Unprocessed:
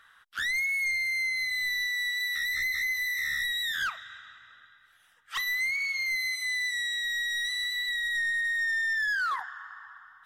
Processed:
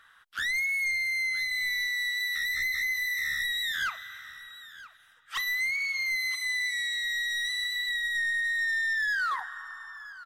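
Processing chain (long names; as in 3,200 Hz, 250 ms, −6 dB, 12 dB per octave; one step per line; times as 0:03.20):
0:05.92–0:06.66: parametric band 920 Hz +8 dB 0.45 octaves
single-tap delay 973 ms −17 dB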